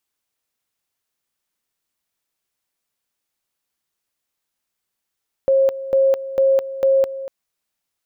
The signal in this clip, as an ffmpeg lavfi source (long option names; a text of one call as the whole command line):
ffmpeg -f lavfi -i "aevalsrc='pow(10,(-11.5-14.5*gte(mod(t,0.45),0.21))/20)*sin(2*PI*539*t)':duration=1.8:sample_rate=44100" out.wav